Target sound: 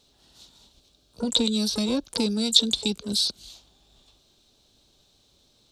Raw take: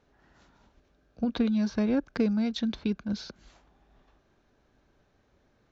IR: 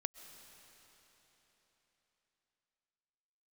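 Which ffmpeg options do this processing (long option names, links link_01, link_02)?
-filter_complex "[0:a]highshelf=frequency=2600:width_type=q:width=3:gain=13.5,asplit=2[link_01][link_02];[link_02]asetrate=88200,aresample=44100,atempo=0.5,volume=-11dB[link_03];[link_01][link_03]amix=inputs=2:normalize=0"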